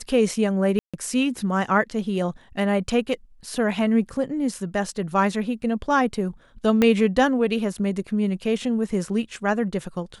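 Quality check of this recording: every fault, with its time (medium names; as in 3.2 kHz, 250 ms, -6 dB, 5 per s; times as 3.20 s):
0.79–0.94 s: dropout 146 ms
6.82 s: pop -7 dBFS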